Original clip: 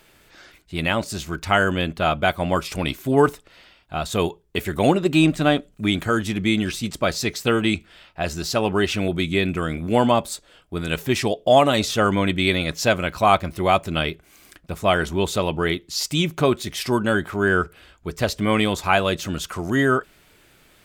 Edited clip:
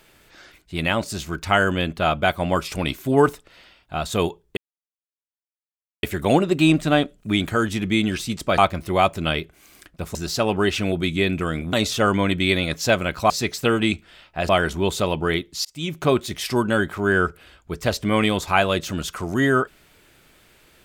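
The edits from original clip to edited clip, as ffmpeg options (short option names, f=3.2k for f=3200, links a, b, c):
-filter_complex "[0:a]asplit=8[a][b][c][d][e][f][g][h];[a]atrim=end=4.57,asetpts=PTS-STARTPTS,afade=t=out:st=4.566:d=0.004:c=hsin,apad=pad_dur=1.46[i];[b]atrim=start=4.57:end=7.122,asetpts=PTS-STARTPTS,afade=t=in:d=0.004:c=hsin[j];[c]atrim=start=13.278:end=14.852[k];[d]atrim=start=8.308:end=9.892[l];[e]atrim=start=11.708:end=13.282[m];[f]atrim=start=7.118:end=8.312[n];[g]atrim=start=14.848:end=16.01,asetpts=PTS-STARTPTS,afade=t=out:st=1.158:d=0.004:c=hsin[o];[h]atrim=start=16.01,asetpts=PTS-STARTPTS,afade=t=in:d=0.44[p];[i][j]concat=n=2:v=0:a=1[q];[q][k]acrossfade=d=0.004:c1=hsin:c2=hsin[r];[r][l]acrossfade=d=0.004:c1=hsin:c2=hsin[s];[s][m]acrossfade=d=0.004:c1=hsin:c2=hsin[t];[t][n]acrossfade=d=0.004:c1=hsin:c2=hsin[u];[o][p]concat=n=2:v=0:a=1[v];[u][v]acrossfade=d=0.004:c1=hsin:c2=hsin"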